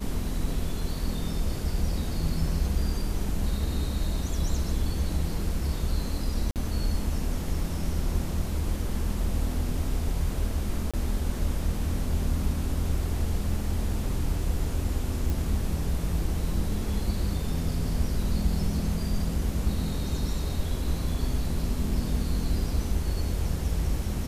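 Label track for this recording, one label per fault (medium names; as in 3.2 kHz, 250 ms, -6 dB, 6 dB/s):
6.510000	6.560000	dropout 48 ms
10.910000	10.940000	dropout 26 ms
15.300000	15.300000	pop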